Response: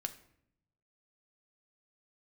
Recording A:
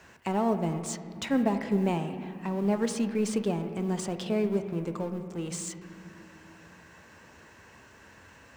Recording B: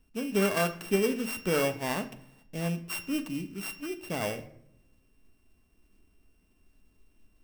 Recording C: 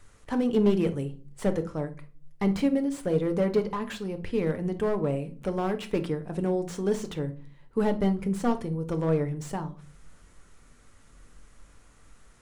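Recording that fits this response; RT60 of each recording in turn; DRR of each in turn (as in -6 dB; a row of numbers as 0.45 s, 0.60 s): B; 2.6 s, 0.70 s, no single decay rate; 7.5 dB, 7.5 dB, 7.5 dB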